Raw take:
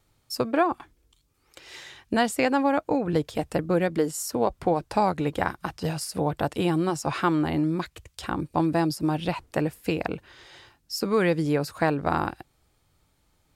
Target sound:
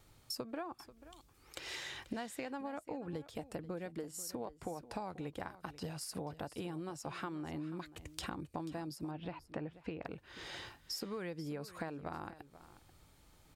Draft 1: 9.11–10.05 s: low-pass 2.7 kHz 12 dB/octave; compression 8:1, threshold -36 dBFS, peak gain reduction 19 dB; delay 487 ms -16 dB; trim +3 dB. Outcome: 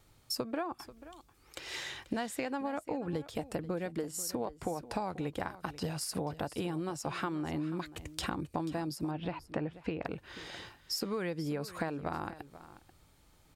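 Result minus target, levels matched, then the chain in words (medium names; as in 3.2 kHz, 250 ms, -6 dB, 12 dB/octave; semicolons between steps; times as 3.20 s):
compression: peak gain reduction -6.5 dB
9.11–10.05 s: low-pass 2.7 kHz 12 dB/octave; compression 8:1, threshold -43.5 dBFS, peak gain reduction 25.5 dB; delay 487 ms -16 dB; trim +3 dB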